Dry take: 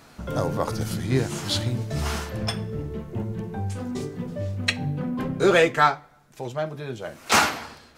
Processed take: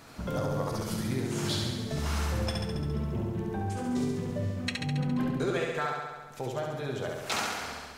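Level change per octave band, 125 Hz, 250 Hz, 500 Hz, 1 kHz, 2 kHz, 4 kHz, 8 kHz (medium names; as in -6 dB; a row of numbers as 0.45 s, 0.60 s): -4.0 dB, -3.0 dB, -7.5 dB, -10.0 dB, -10.0 dB, -7.0 dB, -7.5 dB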